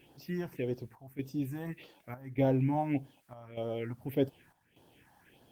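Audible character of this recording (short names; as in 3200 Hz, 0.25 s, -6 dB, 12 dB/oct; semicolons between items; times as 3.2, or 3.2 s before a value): phasing stages 4, 1.7 Hz, lowest notch 400–2200 Hz; a quantiser's noise floor 12-bit, dither triangular; chopped level 0.84 Hz, depth 65%, duty 80%; Opus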